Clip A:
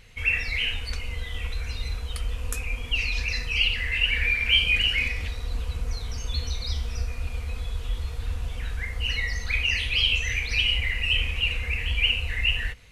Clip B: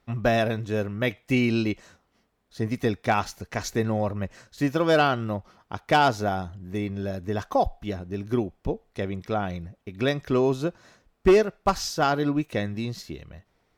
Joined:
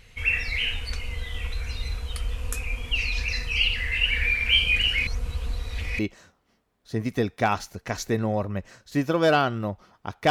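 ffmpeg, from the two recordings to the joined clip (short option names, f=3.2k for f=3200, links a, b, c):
-filter_complex "[0:a]apad=whole_dur=10.3,atrim=end=10.3,asplit=2[a][b];[a]atrim=end=5.072[c];[b]atrim=start=5.068:end=5.992,asetpts=PTS-STARTPTS,areverse[d];[1:a]atrim=start=1.648:end=5.96[e];[c][d]acrossfade=d=0.004:c1=hsin:c2=hsin[f];[f][e]acrossfade=d=0.004:c1=hsin:c2=hsin"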